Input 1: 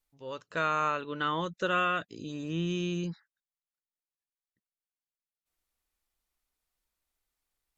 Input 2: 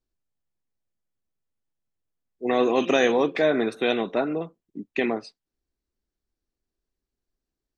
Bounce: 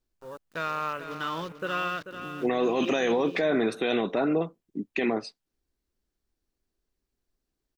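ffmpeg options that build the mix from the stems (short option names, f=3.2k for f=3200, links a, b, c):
-filter_complex "[0:a]acrusher=bits=6:mix=0:aa=0.000001,afwtdn=0.00631,highshelf=f=5.3k:g=6.5,volume=-2.5dB,asplit=2[a][b];[b]volume=-10dB[c];[1:a]volume=3dB,asplit=2[d][e];[e]apad=whole_len=342742[f];[a][f]sidechaincompress=threshold=-21dB:ratio=8:attack=16:release=390[g];[c]aecho=0:1:439|878|1317:1|0.16|0.0256[h];[g][d][h]amix=inputs=3:normalize=0,alimiter=limit=-17dB:level=0:latency=1:release=15"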